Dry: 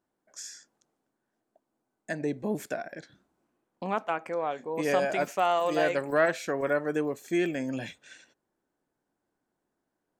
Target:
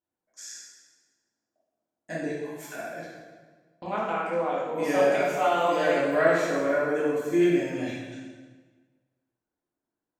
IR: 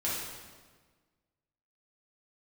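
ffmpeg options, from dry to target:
-filter_complex "[0:a]agate=range=0.316:threshold=0.00355:ratio=16:detection=peak,asplit=3[s0][s1][s2];[s0]afade=t=out:st=2.26:d=0.02[s3];[s1]highpass=f=970:w=0.5412,highpass=f=970:w=1.3066,afade=t=in:st=2.26:d=0.02,afade=t=out:st=2.74:d=0.02[s4];[s2]afade=t=in:st=2.74:d=0.02[s5];[s3][s4][s5]amix=inputs=3:normalize=0[s6];[1:a]atrim=start_sample=2205[s7];[s6][s7]afir=irnorm=-1:irlink=0,volume=0.631"

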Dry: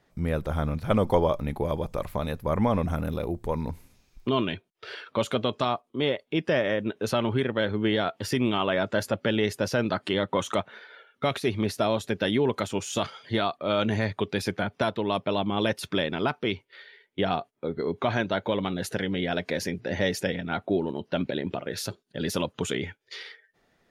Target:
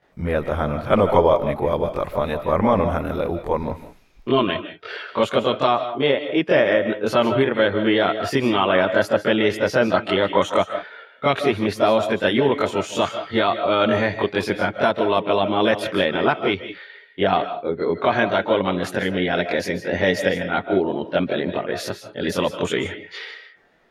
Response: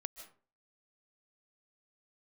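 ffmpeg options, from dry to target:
-filter_complex "[0:a]bass=f=250:g=-7,treble=f=4000:g=-10,asplit=2[s0][s1];[1:a]atrim=start_sample=2205,afade=t=out:st=0.26:d=0.01,atrim=end_sample=11907,adelay=22[s2];[s1][s2]afir=irnorm=-1:irlink=0,volume=3.16[s3];[s0][s3]amix=inputs=2:normalize=0,volume=1.12"

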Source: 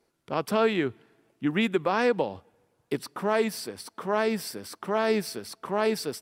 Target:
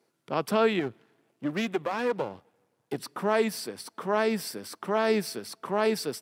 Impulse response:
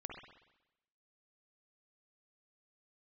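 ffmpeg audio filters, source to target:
-filter_complex "[0:a]asettb=1/sr,asplit=3[s0][s1][s2];[s0]atrim=end=0.794[s3];[s1]atrim=start=0.79:end=2.98,asetpts=PTS-STARTPTS,afade=t=in:d=0.004:c=qsin,afade=t=out:st=2.186:d=0.004:c=qsin,aeval=exprs='if(lt(val(0),0),0.251*val(0),val(0))':c=same[s4];[s2]atrim=start=2.976[s5];[s3][s4]acrossfade=d=0.004:c1=hsin:c2=qsin[s6];[s6][s5]acrossfade=d=0.004:c1=qsin:c2=hsin,highpass=f=110:w=0.5412,highpass=f=110:w=1.3066"

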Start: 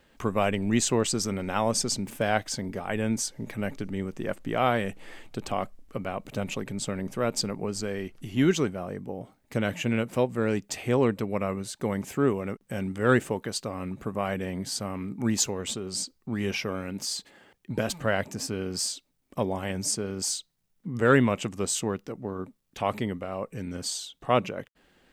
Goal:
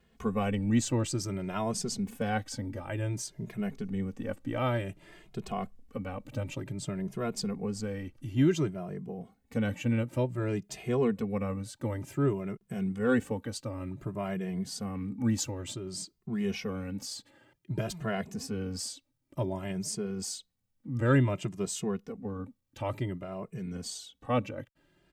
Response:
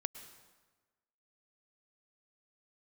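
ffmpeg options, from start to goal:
-filter_complex "[0:a]equalizer=f=96:w=0.33:g=8,asplit=2[s0][s1];[s1]adelay=2.4,afreqshift=0.55[s2];[s0][s2]amix=inputs=2:normalize=1,volume=0.562"

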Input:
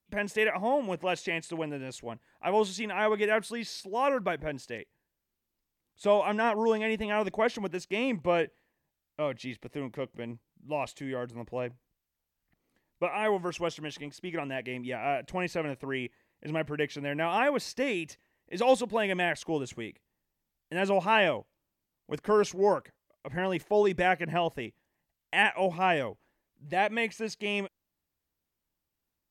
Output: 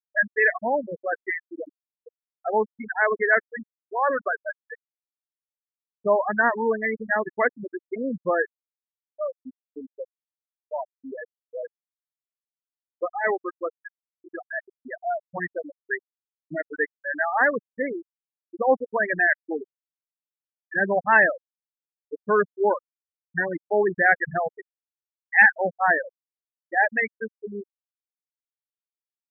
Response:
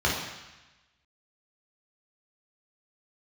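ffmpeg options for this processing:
-af "lowpass=f=1700:t=q:w=3.9,afftfilt=real='re*gte(hypot(re,im),0.178)':imag='im*gte(hypot(re,im),0.178)':win_size=1024:overlap=0.75,volume=1.33"

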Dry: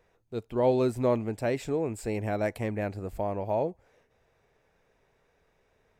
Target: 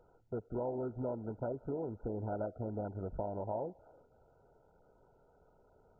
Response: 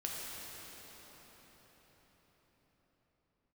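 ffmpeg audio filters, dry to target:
-filter_complex "[0:a]acompressor=threshold=0.0112:ratio=6,asplit=2[s0][s1];[s1]highpass=430,lowpass=3000[s2];[1:a]atrim=start_sample=2205,afade=t=out:st=0.41:d=0.01,atrim=end_sample=18522,lowpass=5200[s3];[s2][s3]afir=irnorm=-1:irlink=0,volume=0.1[s4];[s0][s4]amix=inputs=2:normalize=0,volume=1.33" -ar 16000 -c:a mp2 -b:a 8k

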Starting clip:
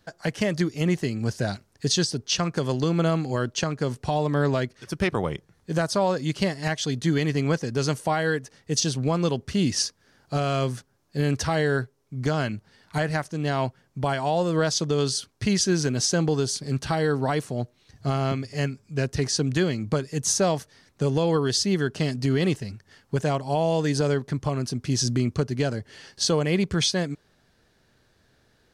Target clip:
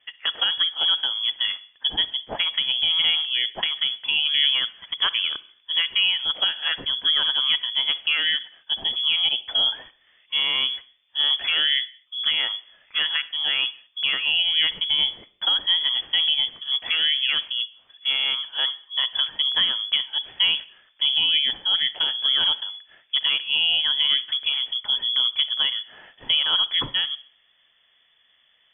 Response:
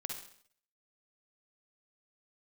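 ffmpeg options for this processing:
-filter_complex "[0:a]lowpass=f=3000:t=q:w=0.5098,lowpass=f=3000:t=q:w=0.6013,lowpass=f=3000:t=q:w=0.9,lowpass=f=3000:t=q:w=2.563,afreqshift=-3500,asplit=2[s0][s1];[1:a]atrim=start_sample=2205,afade=t=out:st=0.31:d=0.01,atrim=end_sample=14112[s2];[s1][s2]afir=irnorm=-1:irlink=0,volume=0.251[s3];[s0][s3]amix=inputs=2:normalize=0"

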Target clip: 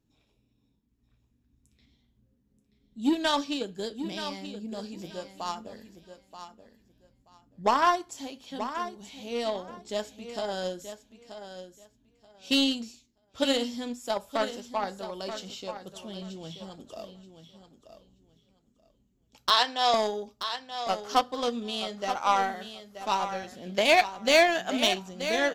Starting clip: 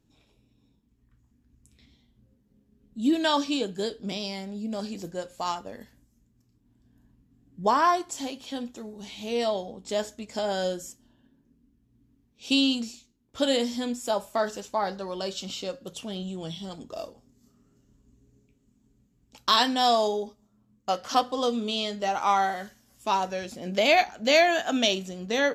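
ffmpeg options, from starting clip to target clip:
-filter_complex "[0:a]equalizer=f=8800:t=o:w=0.32:g=-4,aeval=exprs='0.422*(cos(1*acos(clip(val(0)/0.422,-1,1)))-cos(1*PI/2))+0.0299*(cos(7*acos(clip(val(0)/0.422,-1,1)))-cos(7*PI/2))':c=same,asettb=1/sr,asplit=3[s0][s1][s2];[s0]atrim=end=19.504[s3];[s1]atrim=start=19.5:end=19.94,asetpts=PTS-STARTPTS,afade=t=in:d=0.004:c=qsin,afade=t=out:st=0.436:d=0.004:c=qsin,acrossover=split=350 7200:gain=0.0708 1 0.126[s4][s5][s6];[s4][s5][s6]amix=inputs=3:normalize=0[s7];[s2]atrim=start=19.936[s8];[s3][s7]acrossfade=d=0.004:c1=hsin:c2=qsin[s9];[s9][s8]acrossfade=d=0.004:c1=qsin:c2=hsin,aecho=1:1:930|1860|2790:0.299|0.0567|0.0108"

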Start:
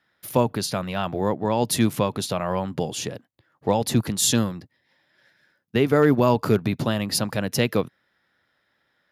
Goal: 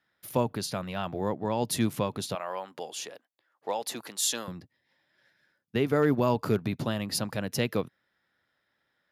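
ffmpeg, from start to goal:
-filter_complex "[0:a]asettb=1/sr,asplit=3[s0][s1][s2];[s0]atrim=end=2.354[s3];[s1]atrim=start=2.35:end=4.48,asetpts=PTS-STARTPTS,afade=t=in:d=0.004:c=qsin,afade=t=out:st=2.126:d=0.004:c=qsin,highpass=540[s4];[s2]atrim=start=4.476[s5];[s3][s4]acrossfade=d=0.004:c1=hsin:c2=qsin[s6];[s6][s5]acrossfade=d=0.004:c1=qsin:c2=hsin,volume=0.473"

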